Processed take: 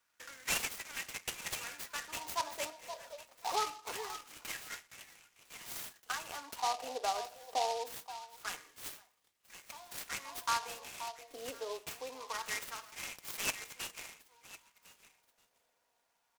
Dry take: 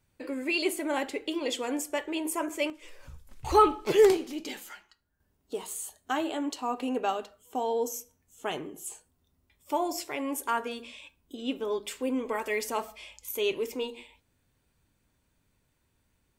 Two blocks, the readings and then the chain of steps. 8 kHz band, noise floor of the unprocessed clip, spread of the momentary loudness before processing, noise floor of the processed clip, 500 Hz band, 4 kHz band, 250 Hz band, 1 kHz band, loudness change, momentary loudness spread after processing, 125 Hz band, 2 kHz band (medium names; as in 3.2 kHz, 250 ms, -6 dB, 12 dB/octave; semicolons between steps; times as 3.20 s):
-2.0 dB, -74 dBFS, 18 LU, -79 dBFS, -16.0 dB, -3.5 dB, -24.5 dB, -7.0 dB, -9.5 dB, 16 LU, -10.5 dB, -4.5 dB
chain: high-pass 250 Hz 24 dB/octave; dynamic bell 2.7 kHz, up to +4 dB, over -52 dBFS, Q 7.7; comb 4.2 ms, depth 49%; compression 2:1, threshold -38 dBFS, peak gain reduction 13.5 dB; repeats whose band climbs or falls 527 ms, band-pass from 810 Hz, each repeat 1.4 oct, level -8.5 dB; LFO high-pass sine 0.24 Hz 620–2300 Hz; delay time shaken by noise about 4 kHz, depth 0.07 ms; trim -3 dB